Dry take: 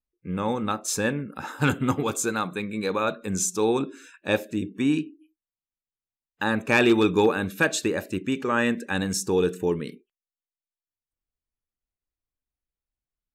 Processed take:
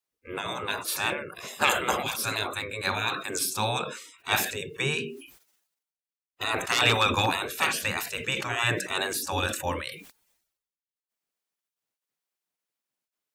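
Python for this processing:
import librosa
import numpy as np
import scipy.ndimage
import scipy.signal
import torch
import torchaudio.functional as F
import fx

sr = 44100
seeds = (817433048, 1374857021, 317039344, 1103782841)

y = scipy.signal.sosfilt(scipy.signal.butter(2, 44.0, 'highpass', fs=sr, output='sos'), x)
y = fx.spec_gate(y, sr, threshold_db=-15, keep='weak')
y = fx.sustainer(y, sr, db_per_s=72.0)
y = y * librosa.db_to_amplitude(7.5)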